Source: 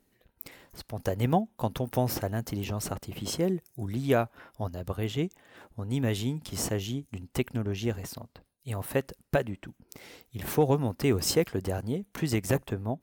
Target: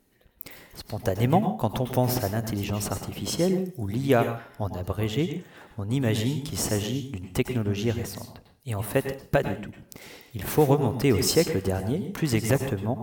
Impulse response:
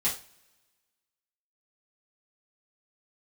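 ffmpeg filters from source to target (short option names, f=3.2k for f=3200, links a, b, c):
-filter_complex "[0:a]asplit=2[a][b];[1:a]atrim=start_sample=2205,adelay=97[c];[b][c]afir=irnorm=-1:irlink=0,volume=-15dB[d];[a][d]amix=inputs=2:normalize=0,volume=3.5dB"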